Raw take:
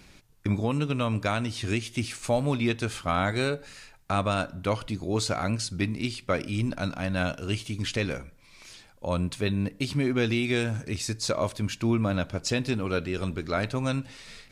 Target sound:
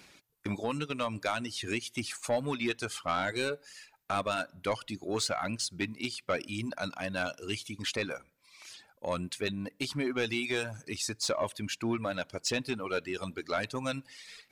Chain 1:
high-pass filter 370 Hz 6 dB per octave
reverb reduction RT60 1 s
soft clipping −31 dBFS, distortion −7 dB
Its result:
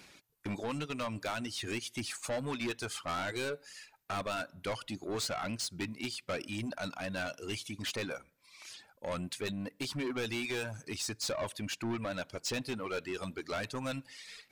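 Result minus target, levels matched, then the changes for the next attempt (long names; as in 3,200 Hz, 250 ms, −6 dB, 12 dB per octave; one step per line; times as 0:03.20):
soft clipping: distortion +9 dB
change: soft clipping −21 dBFS, distortion −16 dB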